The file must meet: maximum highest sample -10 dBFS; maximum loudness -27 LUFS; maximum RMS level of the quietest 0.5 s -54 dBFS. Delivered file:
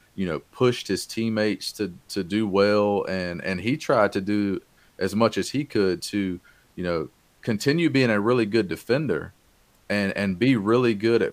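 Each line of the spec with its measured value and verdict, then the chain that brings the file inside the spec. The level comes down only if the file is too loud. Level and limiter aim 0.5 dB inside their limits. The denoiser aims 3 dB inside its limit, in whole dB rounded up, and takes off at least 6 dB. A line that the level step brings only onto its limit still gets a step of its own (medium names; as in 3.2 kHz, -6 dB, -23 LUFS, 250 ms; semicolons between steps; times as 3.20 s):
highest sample -5.0 dBFS: fail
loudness -24.0 LUFS: fail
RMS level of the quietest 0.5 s -60 dBFS: pass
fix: trim -3.5 dB; peak limiter -10.5 dBFS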